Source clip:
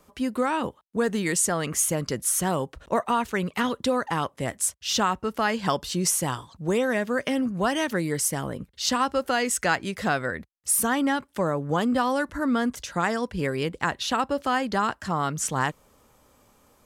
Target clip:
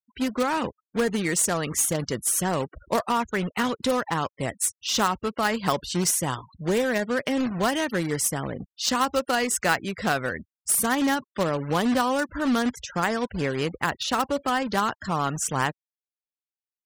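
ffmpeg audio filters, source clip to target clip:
-af "acrusher=bits=2:mode=log:mix=0:aa=0.000001,afftfilt=real='re*gte(hypot(re,im),0.0141)':imag='im*gte(hypot(re,im),0.0141)':win_size=1024:overlap=0.75"

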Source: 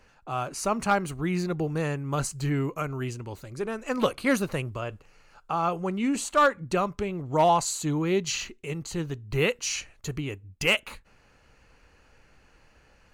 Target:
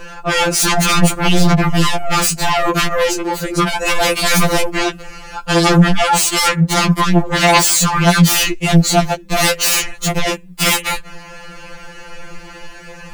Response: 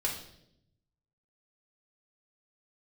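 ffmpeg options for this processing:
-af "apsyclip=22dB,aeval=exprs='1.12*sin(PI/2*3.55*val(0)/1.12)':c=same,afftfilt=real='re*2.83*eq(mod(b,8),0)':imag='im*2.83*eq(mod(b,8),0)':win_size=2048:overlap=0.75,volume=-9.5dB"

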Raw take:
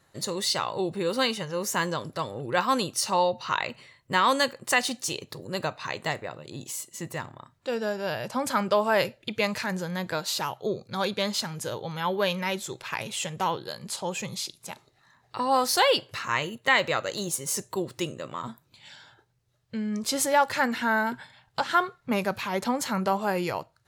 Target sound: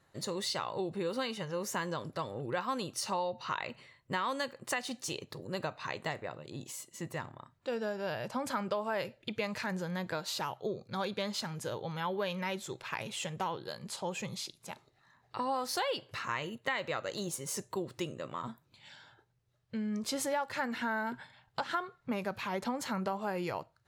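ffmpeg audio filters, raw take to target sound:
-af "highshelf=f=4.5k:g=-6.5,acompressor=threshold=-27dB:ratio=4,volume=-4dB"

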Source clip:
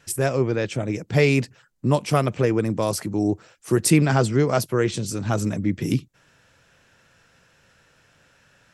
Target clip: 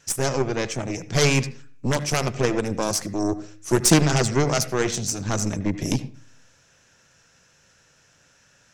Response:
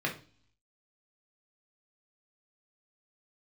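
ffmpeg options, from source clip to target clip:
-filter_complex "[0:a]aeval=exprs='0.562*(cos(1*acos(clip(val(0)/0.562,-1,1)))-cos(1*PI/2))+0.251*(cos(4*acos(clip(val(0)/0.562,-1,1)))-cos(4*PI/2))+0.224*(cos(6*acos(clip(val(0)/0.562,-1,1)))-cos(6*PI/2))':c=same,equalizer=f=6.2k:t=o:w=0.64:g=12,asplit=2[a][b];[1:a]atrim=start_sample=2205,adelay=75[c];[b][c]afir=irnorm=-1:irlink=0,volume=-21dB[d];[a][d]amix=inputs=2:normalize=0,volume=-2.5dB"

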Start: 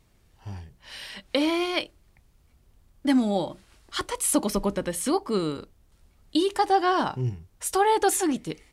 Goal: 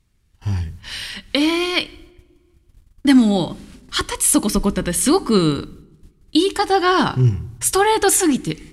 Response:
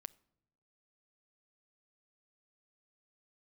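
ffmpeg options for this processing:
-filter_complex "[0:a]agate=range=-16dB:threshold=-55dB:ratio=16:detection=peak,asplit=2[a][b];[b]equalizer=f=650:w=1.5:g=-15[c];[1:a]atrim=start_sample=2205,asetrate=23814,aresample=44100,lowshelf=f=120:g=5[d];[c][d]afir=irnorm=-1:irlink=0,volume=14dB[e];[a][e]amix=inputs=2:normalize=0,dynaudnorm=f=200:g=5:m=3dB,volume=-1dB"

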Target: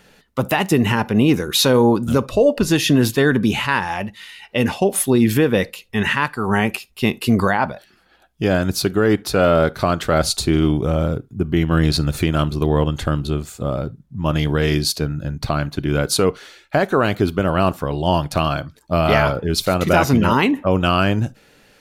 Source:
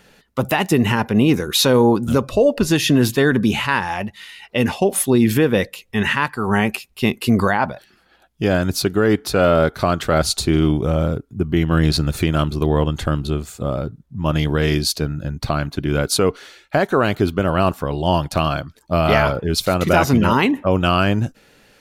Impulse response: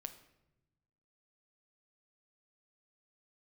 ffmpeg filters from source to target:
-filter_complex "[0:a]asplit=2[a][b];[1:a]atrim=start_sample=2205,atrim=end_sample=3528[c];[b][c]afir=irnorm=-1:irlink=0,volume=-3.5dB[d];[a][d]amix=inputs=2:normalize=0,volume=-3dB"

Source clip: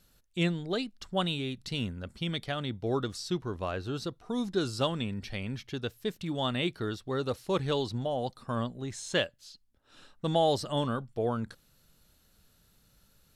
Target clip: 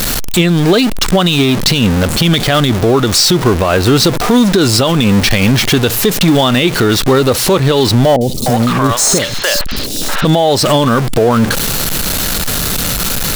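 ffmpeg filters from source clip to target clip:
-filter_complex "[0:a]aeval=exprs='val(0)+0.5*0.0178*sgn(val(0))':c=same,equalizer=f=68:w=0.75:g=-5,acompressor=threshold=-30dB:ratio=6,asettb=1/sr,asplit=3[a][b][c];[a]atrim=end=8.164[d];[b]atrim=start=8.16:end=10.25,asetpts=PTS-STARTPTS,afade=t=in:d=0.004:c=qsin,afade=t=out:st=2.086:d=0.004:c=qsin,acrossover=split=520|3800[e][f][g];[g]adelay=50[h];[f]adelay=300[i];[e][i][h]amix=inputs=3:normalize=0,atrim=end_sample=92169[j];[c]atrim=start=10.246[k];[d][j]acrossfade=d=0.004:c1=hsin:c2=qsin[l];[l][k]acrossfade=d=0.004:c1=qsin:c2=hsin,alimiter=level_in=27dB:limit=-1dB:release=50:level=0:latency=1,volume=-1dB"

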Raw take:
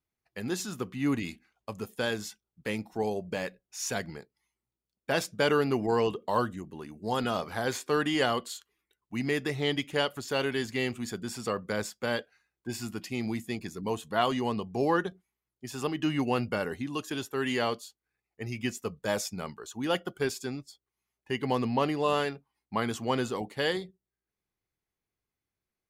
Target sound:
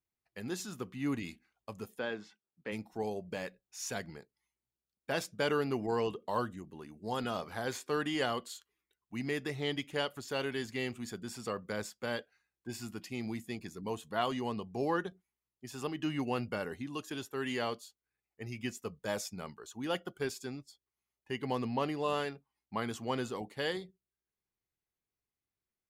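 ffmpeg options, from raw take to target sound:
-filter_complex "[0:a]asplit=3[a][b][c];[a]afade=t=out:st=1.98:d=0.02[d];[b]highpass=190,lowpass=2.7k,afade=t=in:st=1.98:d=0.02,afade=t=out:st=2.71:d=0.02[e];[c]afade=t=in:st=2.71:d=0.02[f];[d][e][f]amix=inputs=3:normalize=0,volume=-6dB"

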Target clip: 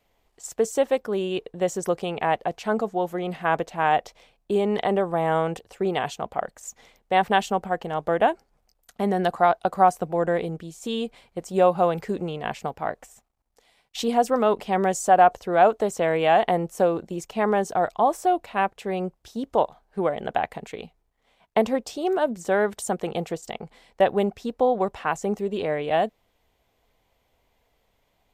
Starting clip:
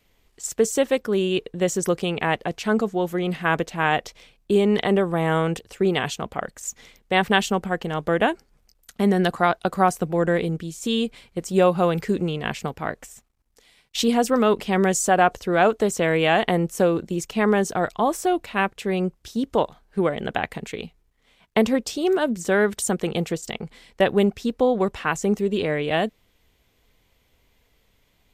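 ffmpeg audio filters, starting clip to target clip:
-af "equalizer=f=740:t=o:w=1.2:g=10.5,volume=-7dB"

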